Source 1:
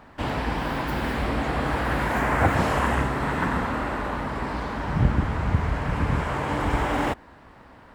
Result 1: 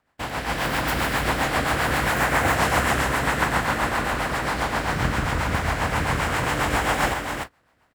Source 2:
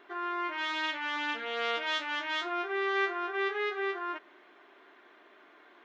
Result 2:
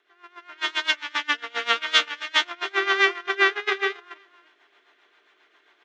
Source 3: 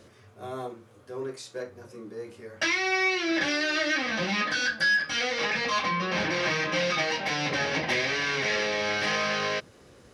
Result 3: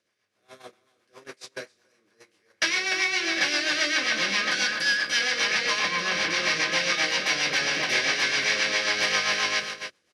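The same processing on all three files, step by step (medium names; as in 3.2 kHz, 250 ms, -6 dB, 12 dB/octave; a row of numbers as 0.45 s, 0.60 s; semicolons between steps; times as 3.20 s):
spectral levelling over time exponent 0.6; on a send: delay 299 ms -6 dB; on the sum: rotary cabinet horn 7.5 Hz; treble shelf 4.9 kHz +9.5 dB; gate -29 dBFS, range -27 dB; bass shelf 470 Hz -11 dB; level rider gain up to 6.5 dB; normalise loudness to -23 LUFS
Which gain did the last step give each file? -2.5 dB, +7.0 dB, -6.5 dB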